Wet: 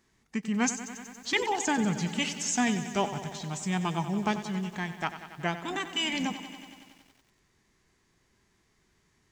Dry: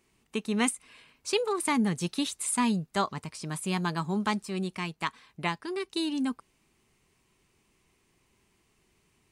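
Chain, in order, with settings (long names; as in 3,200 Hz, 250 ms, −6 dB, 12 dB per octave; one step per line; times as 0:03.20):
formants moved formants −5 semitones
feedback echo at a low word length 93 ms, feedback 80%, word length 9 bits, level −12.5 dB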